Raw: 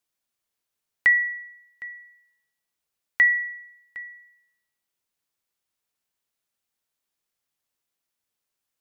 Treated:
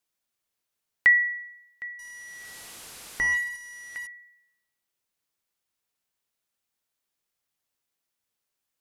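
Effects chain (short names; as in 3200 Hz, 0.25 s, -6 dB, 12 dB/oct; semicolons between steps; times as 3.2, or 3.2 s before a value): 1.99–4.07 delta modulation 64 kbps, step -37 dBFS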